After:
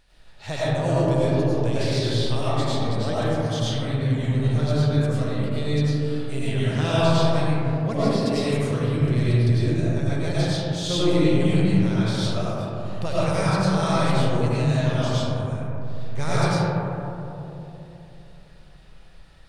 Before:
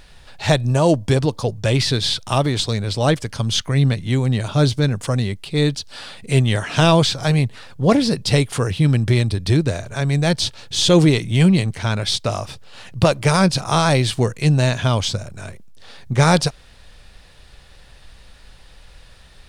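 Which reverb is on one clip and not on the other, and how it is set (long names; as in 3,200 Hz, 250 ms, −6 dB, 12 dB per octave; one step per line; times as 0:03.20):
comb and all-pass reverb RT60 3.3 s, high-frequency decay 0.25×, pre-delay 60 ms, DRR −10 dB
level −16 dB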